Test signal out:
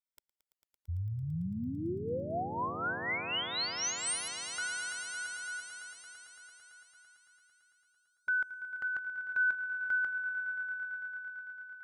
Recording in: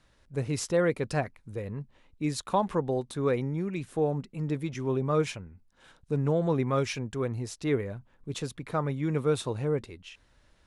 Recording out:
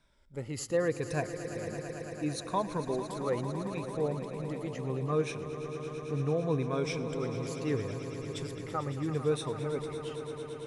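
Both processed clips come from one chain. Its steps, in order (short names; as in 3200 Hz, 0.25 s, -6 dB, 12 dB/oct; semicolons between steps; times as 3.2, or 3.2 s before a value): moving spectral ripple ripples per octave 1.6, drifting -0.73 Hz, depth 11 dB; on a send: swelling echo 0.112 s, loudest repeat 5, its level -13.5 dB; on the sum: gain -6.5 dB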